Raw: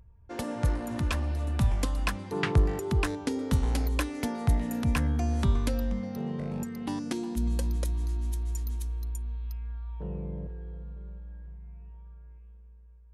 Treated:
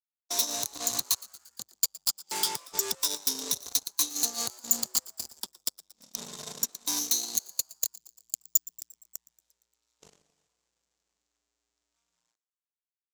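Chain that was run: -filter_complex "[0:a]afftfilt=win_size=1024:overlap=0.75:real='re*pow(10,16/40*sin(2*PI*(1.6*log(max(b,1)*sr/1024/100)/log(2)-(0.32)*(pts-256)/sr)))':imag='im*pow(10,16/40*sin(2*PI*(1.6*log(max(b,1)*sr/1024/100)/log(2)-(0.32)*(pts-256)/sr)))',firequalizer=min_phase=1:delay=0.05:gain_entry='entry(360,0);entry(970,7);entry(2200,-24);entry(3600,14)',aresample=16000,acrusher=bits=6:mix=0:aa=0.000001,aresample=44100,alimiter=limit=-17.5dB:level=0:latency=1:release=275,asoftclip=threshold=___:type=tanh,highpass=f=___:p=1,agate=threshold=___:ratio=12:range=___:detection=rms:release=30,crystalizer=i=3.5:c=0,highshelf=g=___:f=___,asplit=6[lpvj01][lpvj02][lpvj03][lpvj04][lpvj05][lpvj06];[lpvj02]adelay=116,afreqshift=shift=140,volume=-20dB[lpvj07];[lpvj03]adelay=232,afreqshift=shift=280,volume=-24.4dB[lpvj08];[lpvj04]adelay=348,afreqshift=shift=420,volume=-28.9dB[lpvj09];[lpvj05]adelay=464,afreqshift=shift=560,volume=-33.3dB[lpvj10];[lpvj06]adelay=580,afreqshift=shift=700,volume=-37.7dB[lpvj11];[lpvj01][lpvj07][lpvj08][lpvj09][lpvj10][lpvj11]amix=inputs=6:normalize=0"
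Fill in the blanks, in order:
-34dB, 410, -41dB, -39dB, 9, 4.8k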